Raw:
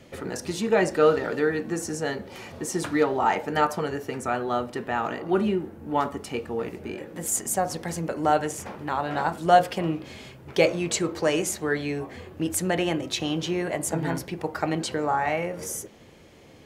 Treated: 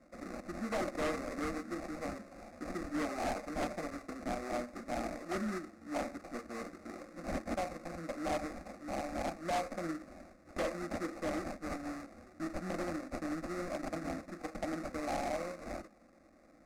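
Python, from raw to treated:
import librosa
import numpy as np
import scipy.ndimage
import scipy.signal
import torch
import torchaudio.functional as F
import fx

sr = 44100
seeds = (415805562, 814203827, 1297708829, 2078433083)

y = fx.lower_of_two(x, sr, delay_ms=0.48, at=(11.2, 13.42))
y = fx.low_shelf(y, sr, hz=210.0, db=-9.5)
y = fx.sample_hold(y, sr, seeds[0], rate_hz=1600.0, jitter_pct=20)
y = fx.fixed_phaser(y, sr, hz=630.0, stages=8)
y = np.clip(y, -10.0 ** (-24.5 / 20.0), 10.0 ** (-24.5 / 20.0))
y = fx.air_absorb(y, sr, metres=61.0)
y = y * 10.0 ** (-5.5 / 20.0)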